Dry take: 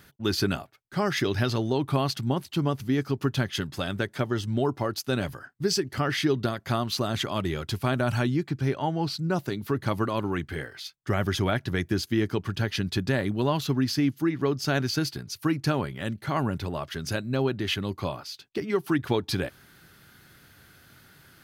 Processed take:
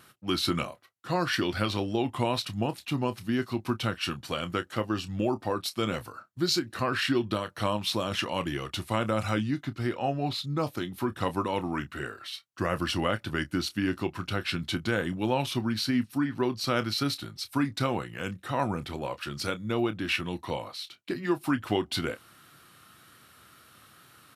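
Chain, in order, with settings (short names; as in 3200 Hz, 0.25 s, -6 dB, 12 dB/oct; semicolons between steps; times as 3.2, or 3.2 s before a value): HPF 98 Hz; low shelf 260 Hz -6.5 dB; doubler 25 ms -12.5 dB; wow and flutter 24 cents; varispeed -12%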